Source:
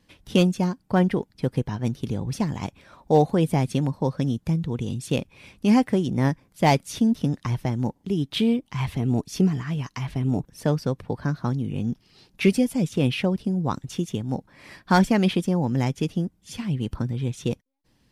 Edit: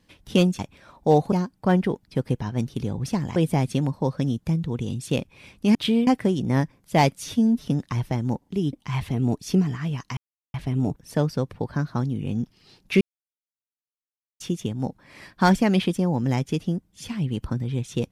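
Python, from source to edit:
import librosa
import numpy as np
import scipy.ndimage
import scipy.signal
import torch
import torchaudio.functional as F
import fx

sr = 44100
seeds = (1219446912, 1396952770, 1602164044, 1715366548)

y = fx.edit(x, sr, fx.move(start_s=2.63, length_s=0.73, to_s=0.59),
    fx.stretch_span(start_s=6.92, length_s=0.28, factor=1.5),
    fx.move(start_s=8.27, length_s=0.32, to_s=5.75),
    fx.insert_silence(at_s=10.03, length_s=0.37),
    fx.silence(start_s=12.5, length_s=1.39), tone=tone)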